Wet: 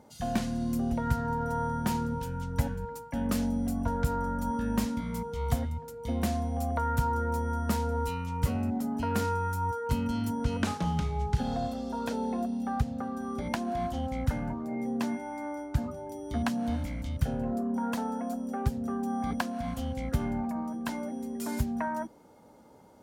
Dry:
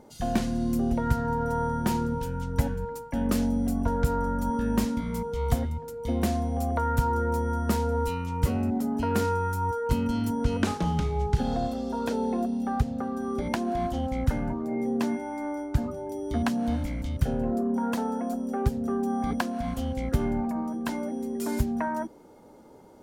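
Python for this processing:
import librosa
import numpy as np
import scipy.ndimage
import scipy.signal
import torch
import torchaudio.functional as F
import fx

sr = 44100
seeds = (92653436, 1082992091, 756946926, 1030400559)

y = scipy.signal.sosfilt(scipy.signal.butter(2, 49.0, 'highpass', fs=sr, output='sos'), x)
y = fx.peak_eq(y, sr, hz=370.0, db=-7.0, octaves=0.67)
y = y * 10.0 ** (-2.0 / 20.0)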